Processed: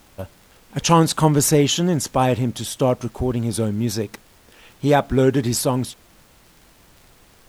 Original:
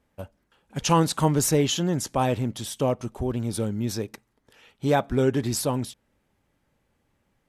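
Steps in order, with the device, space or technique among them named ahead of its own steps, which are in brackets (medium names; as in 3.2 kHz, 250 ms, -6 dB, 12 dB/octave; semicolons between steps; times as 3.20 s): vinyl LP (crackle; pink noise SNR 31 dB); trim +5.5 dB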